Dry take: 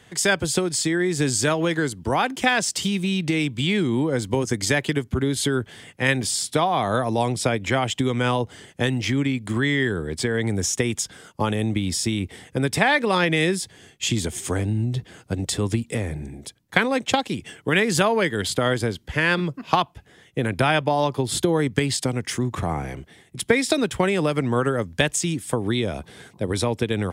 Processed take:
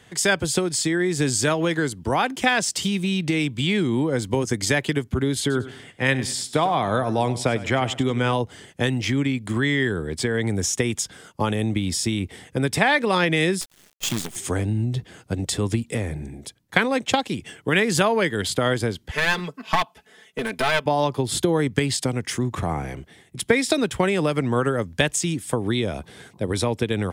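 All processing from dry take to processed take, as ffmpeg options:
ffmpeg -i in.wav -filter_complex "[0:a]asettb=1/sr,asplit=3[link_01][link_02][link_03];[link_01]atrim=end=5.404[link_04];[link_02]atrim=start=5.4:end=8.33,asetpts=PTS-STARTPTS,afade=type=in:duration=0.004:curve=qsin,afade=type=out:start_time=2.926:duration=0.004:curve=qsin,highshelf=frequency=5800:gain=-5.5,aecho=1:1:99|198|297:0.168|0.0621|0.023,atrim=end_sample=129213[link_05];[link_03]atrim=start=8.326[link_06];[link_04][link_05]acrossfade=duration=0.004:curve1=hsin:curve2=qsin[link_07];[link_07][link_06]acrossfade=duration=0.004:curve1=qsin:curve2=hsin,asettb=1/sr,asplit=3[link_08][link_09][link_10];[link_08]atrim=end=13.614[link_11];[link_09]atrim=start=13.61:end=14.36,asetpts=PTS-STARTPTS,afade=type=in:duration=0.004:curve=qsin,afade=type=out:start_time=0.746:duration=0.004:curve=qsin,highpass=frequency=130:width=0.5412,highpass=frequency=130:width=1.3066,equalizer=frequency=890:width=0.76:gain=-14.5,acrusher=bits=5:dc=4:mix=0:aa=0.000001[link_12];[link_10]atrim=start=14.356[link_13];[link_11][link_12]acrossfade=duration=0.004:curve1=hsin:curve2=qsin[link_14];[link_14][link_13]acrossfade=duration=0.004:curve1=qsin:curve2=hsin,asettb=1/sr,asplit=3[link_15][link_16][link_17];[link_15]atrim=end=19.114[link_18];[link_16]atrim=start=19.11:end=20.86,asetpts=PTS-STARTPTS,afade=type=in:duration=0.004:curve=qsin,afade=type=out:start_time=1.746:duration=0.004:curve=qsin,highpass=frequency=490:poles=1,aecho=1:1:4.6:0.85,atrim=end_sample=77175,aeval=exprs='clip(val(0),-1,0.0501)':channel_layout=same[link_19];[link_17]atrim=start=20.856[link_20];[link_18][link_19]acrossfade=duration=0.004:curve1=hsin:curve2=qsin[link_21];[link_21][link_20]acrossfade=duration=0.004:curve1=qsin:curve2=hsin" out.wav

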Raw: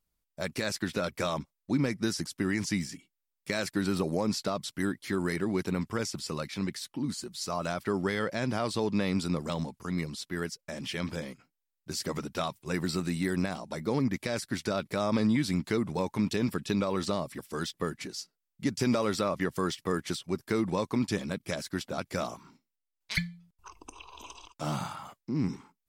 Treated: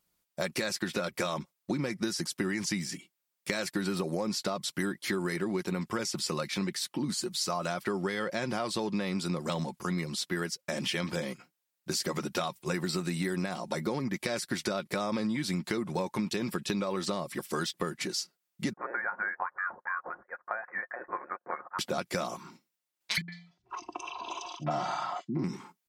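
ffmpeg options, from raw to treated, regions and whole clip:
ffmpeg -i in.wav -filter_complex "[0:a]asettb=1/sr,asplit=3[link_01][link_02][link_03];[link_01]atrim=end=18.734[link_04];[link_02]atrim=start=18.73:end=21.79,asetpts=PTS-STARTPTS,afade=type=in:duration=0.004:curve=qsin,afade=type=out:start_time=3.056:duration=0.004:curve=qsin,highpass=frequency=1200:width=0.5412,highpass=frequency=1200:width=1.3066,lowpass=frequency=2400:width_type=q:width=0.5098,lowpass=frequency=2400:width_type=q:width=0.6013,lowpass=frequency=2400:width_type=q:width=0.9,lowpass=frequency=2400:width_type=q:width=2.563,afreqshift=-2800[link_05];[link_03]atrim=start=21.786[link_06];[link_04][link_05]acrossfade=duration=0.004:curve1=hsin:curve2=qsin[link_07];[link_07][link_06]acrossfade=duration=0.004:curve1=qsin:curve2=hsin,asettb=1/sr,asplit=3[link_08][link_09][link_10];[link_08]atrim=end=23.214[link_11];[link_09]atrim=start=23.21:end=25.44,asetpts=PTS-STARTPTS,afade=type=in:duration=0.004:curve=qsin,afade=type=out:start_time=2.226:duration=0.004:curve=qsin,highpass=120,equalizer=frequency=140:width_type=q:width=4:gain=5,equalizer=frequency=750:width_type=q:width=4:gain=8,equalizer=frequency=1900:width_type=q:width=4:gain=4,lowpass=frequency=5800:width=0.5412,lowpass=frequency=5800:width=1.3066,aecho=1:1:3:0.42,atrim=end_sample=98343,acrossover=split=260|2900[link_12][link_13][link_14];[link_13]adelay=70[link_15];[link_14]adelay=110[link_16];[link_12][link_15][link_16]amix=inputs=3:normalize=0,atrim=end_sample=98343[link_17];[link_10]atrim=start=25.436[link_18];[link_11][link_17]acrossfade=duration=0.004:curve1=hsin:curve2=qsin[link_19];[link_19][link_18]acrossfade=duration=0.004:curve1=qsin:curve2=hsin,highpass=frequency=210:poles=1,aecho=1:1:5.6:0.37,acompressor=threshold=-36dB:ratio=6,volume=7.5dB" out.wav

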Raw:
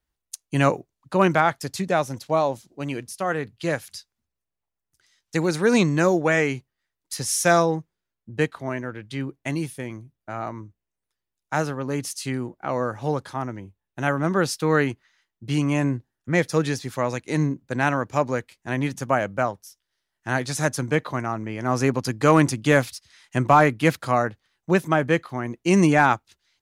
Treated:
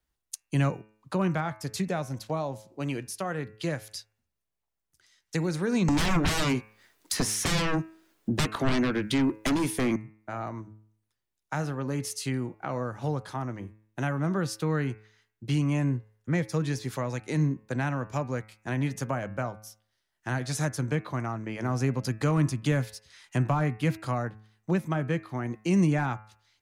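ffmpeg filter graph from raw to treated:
ffmpeg -i in.wav -filter_complex "[0:a]asettb=1/sr,asplit=3[link_01][link_02][link_03];[link_01]atrim=end=5.884[link_04];[link_02]atrim=start=5.88:end=9.96,asetpts=PTS-STARTPTS,afade=type=in:duration=0.004:curve=qsin,afade=type=out:start_time=4.076:duration=0.004:curve=qsin,lowshelf=frequency=180:width_type=q:width=1.5:gain=-10,acrossover=split=370|930|2700[link_05][link_06][link_07][link_08];[link_05]acompressor=threshold=-35dB:ratio=3[link_09];[link_06]acompressor=threshold=-26dB:ratio=3[link_10];[link_07]acompressor=threshold=-27dB:ratio=3[link_11];[link_08]acompressor=threshold=-43dB:ratio=3[link_12];[link_09][link_10][link_11][link_12]amix=inputs=4:normalize=0,aeval=exprs='0.266*sin(PI/2*7.08*val(0)/0.266)':channel_layout=same[link_13];[link_03]atrim=start=9.956[link_14];[link_04][link_13]acrossfade=duration=0.004:curve1=hsin:curve2=qsin[link_15];[link_15][link_14]acrossfade=duration=0.004:curve1=qsin:curve2=hsin,acrossover=split=190[link_16][link_17];[link_17]acompressor=threshold=-32dB:ratio=3[link_18];[link_16][link_18]amix=inputs=2:normalize=0,bandreject=frequency=107.5:width_type=h:width=4,bandreject=frequency=215:width_type=h:width=4,bandreject=frequency=322.5:width_type=h:width=4,bandreject=frequency=430:width_type=h:width=4,bandreject=frequency=537.5:width_type=h:width=4,bandreject=frequency=645:width_type=h:width=4,bandreject=frequency=752.5:width_type=h:width=4,bandreject=frequency=860:width_type=h:width=4,bandreject=frequency=967.5:width_type=h:width=4,bandreject=frequency=1075:width_type=h:width=4,bandreject=frequency=1182.5:width_type=h:width=4,bandreject=frequency=1290:width_type=h:width=4,bandreject=frequency=1397.5:width_type=h:width=4,bandreject=frequency=1505:width_type=h:width=4,bandreject=frequency=1612.5:width_type=h:width=4,bandreject=frequency=1720:width_type=h:width=4,bandreject=frequency=1827.5:width_type=h:width=4,bandreject=frequency=1935:width_type=h:width=4,bandreject=frequency=2042.5:width_type=h:width=4,bandreject=frequency=2150:width_type=h:width=4,bandreject=frequency=2257.5:width_type=h:width=4,bandreject=frequency=2365:width_type=h:width=4,bandreject=frequency=2472.5:width_type=h:width=4,bandreject=frequency=2580:width_type=h:width=4,bandreject=frequency=2687.5:width_type=h:width=4,bandreject=frequency=2795:width_type=h:width=4" out.wav

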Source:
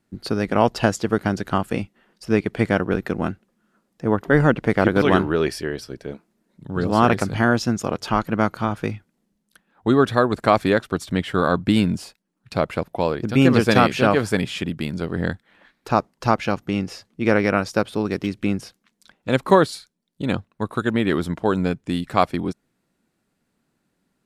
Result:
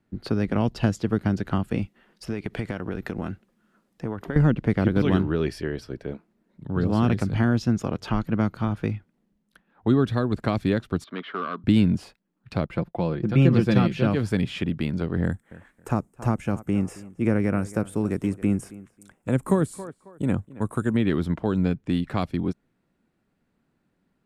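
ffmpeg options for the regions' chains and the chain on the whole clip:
ffmpeg -i in.wav -filter_complex "[0:a]asettb=1/sr,asplit=3[link_01][link_02][link_03];[link_01]atrim=end=1.824[link_04];[link_02]atrim=start=1.82:end=4.36,asetpts=PTS-STARTPTS,afade=type=in:duration=0.004:curve=qsin,afade=type=out:start_time=2.536:duration=0.004:curve=qsin,highshelf=frequency=3400:gain=10,acompressor=threshold=-24dB:ratio=10:attack=3.2:release=140:knee=1:detection=peak[link_05];[link_03]atrim=start=4.356[link_06];[link_04][link_05]acrossfade=duration=0.004:curve1=hsin:curve2=qsin[link_07];[link_07][link_06]acrossfade=duration=0.004:curve1=qsin:curve2=hsin,asettb=1/sr,asplit=3[link_08][link_09][link_10];[link_08]atrim=end=11.044[link_11];[link_09]atrim=start=11.04:end=11.64,asetpts=PTS-STARTPTS,afade=type=in:duration=0.004:curve=qsin,afade=type=out:start_time=0.596:duration=0.004:curve=qsin,volume=13.5dB,asoftclip=hard,volume=-13.5dB,highpass=frequency=280:width=0.5412,highpass=frequency=280:width=1.3066,equalizer=frequency=310:width_type=q:width=4:gain=-10,equalizer=frequency=520:width_type=q:width=4:gain=-9,equalizer=frequency=810:width_type=q:width=4:gain=-8,equalizer=frequency=1200:width_type=q:width=4:gain=8,equalizer=frequency=1900:width_type=q:width=4:gain=-6,equalizer=frequency=2700:width_type=q:width=4:gain=-6,lowpass=frequency=3800:width=0.5412,lowpass=frequency=3800:width=1.3066[link_12];[link_10]atrim=start=11.636[link_13];[link_11][link_12]acrossfade=duration=0.004:curve1=hsin:curve2=qsin[link_14];[link_14][link_13]acrossfade=duration=0.004:curve1=qsin:curve2=hsin,asettb=1/sr,asplit=3[link_15][link_16][link_17];[link_15]atrim=end=12.664[link_18];[link_16]atrim=start=12.66:end=14.07,asetpts=PTS-STARTPTS,afade=type=in:duration=0.004:curve=qsin,afade=type=out:start_time=1.406:duration=0.004:curve=qsin,highshelf=frequency=3800:gain=-7.5,agate=range=-33dB:threshold=-42dB:ratio=3:release=100:detection=peak,aecho=1:1:5.8:0.52,atrim=end_sample=62181[link_19];[link_17]atrim=start=14.066[link_20];[link_18][link_19]acrossfade=duration=0.004:curve1=hsin:curve2=qsin[link_21];[link_21][link_20]acrossfade=duration=0.004:curve1=qsin:curve2=hsin,asettb=1/sr,asplit=3[link_22][link_23][link_24];[link_22]atrim=end=15.244[link_25];[link_23]atrim=start=15.24:end=20.97,asetpts=PTS-STARTPTS,afade=type=in:duration=0.004:curve=qsin,afade=type=out:start_time=5.726:duration=0.004:curve=qsin,acrossover=split=2600[link_26][link_27];[link_27]acompressor=threshold=-41dB:ratio=4:attack=1:release=60[link_28];[link_26][link_28]amix=inputs=2:normalize=0,highshelf=frequency=6000:width_type=q:width=3:gain=12.5,asplit=2[link_29][link_30];[link_30]adelay=271,lowpass=frequency=3200:poles=1,volume=-20dB,asplit=2[link_31][link_32];[link_32]adelay=271,lowpass=frequency=3200:poles=1,volume=0.21[link_33];[link_29][link_31][link_33]amix=inputs=3:normalize=0,atrim=end_sample=252693[link_34];[link_24]atrim=start=20.966[link_35];[link_25][link_34]acrossfade=duration=0.004:curve1=hsin:curve2=qsin[link_36];[link_36][link_35]acrossfade=duration=0.004:curve1=qsin:curve2=hsin,bass=frequency=250:gain=-2,treble=frequency=4000:gain=-10,acrossover=split=300|3000[link_37][link_38][link_39];[link_38]acompressor=threshold=-30dB:ratio=3[link_40];[link_37][link_40][link_39]amix=inputs=3:normalize=0,lowshelf=frequency=200:gain=7,volume=-1.5dB" out.wav

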